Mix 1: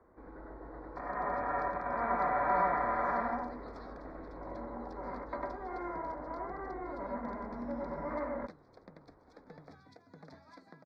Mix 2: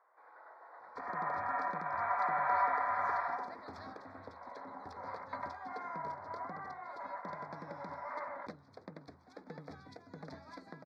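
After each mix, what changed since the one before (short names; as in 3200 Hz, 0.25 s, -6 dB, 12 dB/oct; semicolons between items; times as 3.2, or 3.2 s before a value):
first sound: add HPF 730 Hz 24 dB/oct; second sound +5.0 dB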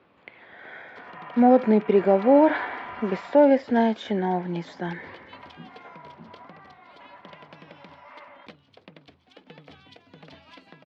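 speech: unmuted; first sound -5.5 dB; master: remove Butterworth band-stop 2900 Hz, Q 1.1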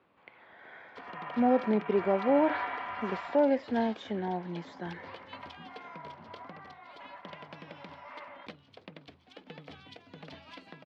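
speech -8.5 dB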